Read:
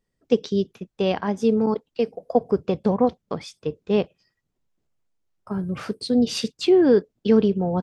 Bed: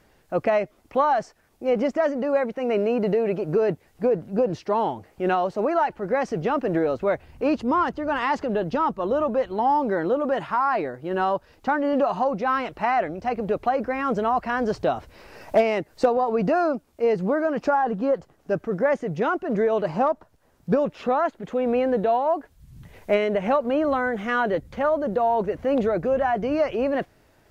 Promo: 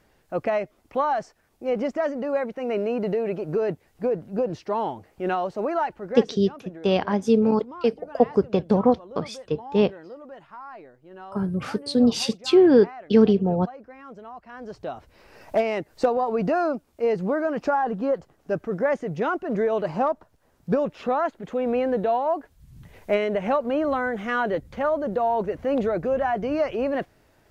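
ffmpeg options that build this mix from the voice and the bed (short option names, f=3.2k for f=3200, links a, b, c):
-filter_complex "[0:a]adelay=5850,volume=1dB[a];[1:a]volume=14dB,afade=t=out:st=5.85:d=0.56:silence=0.16788,afade=t=in:st=14.47:d=1.46:silence=0.141254[b];[a][b]amix=inputs=2:normalize=0"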